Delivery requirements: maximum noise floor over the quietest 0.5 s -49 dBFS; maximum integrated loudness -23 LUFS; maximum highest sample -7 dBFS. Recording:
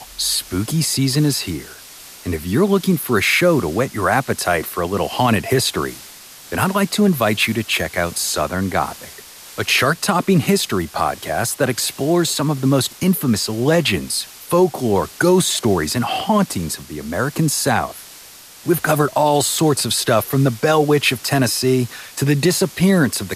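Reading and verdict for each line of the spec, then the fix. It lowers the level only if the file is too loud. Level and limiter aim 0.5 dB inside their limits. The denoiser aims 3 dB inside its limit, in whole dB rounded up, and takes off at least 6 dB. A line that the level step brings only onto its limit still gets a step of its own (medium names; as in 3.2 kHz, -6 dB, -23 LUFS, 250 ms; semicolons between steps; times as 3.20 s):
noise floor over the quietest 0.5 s -41 dBFS: fail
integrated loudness -18.0 LUFS: fail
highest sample -4.5 dBFS: fail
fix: noise reduction 6 dB, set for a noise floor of -41 dBFS; trim -5.5 dB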